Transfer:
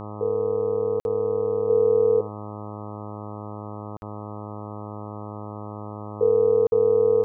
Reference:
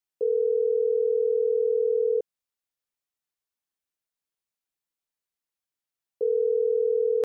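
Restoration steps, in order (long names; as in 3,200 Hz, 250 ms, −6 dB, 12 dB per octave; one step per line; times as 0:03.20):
hum removal 104.7 Hz, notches 12
repair the gap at 0:01.00/0:03.97/0:06.67, 51 ms
echo removal 78 ms −18 dB
level correction −5.5 dB, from 0:01.69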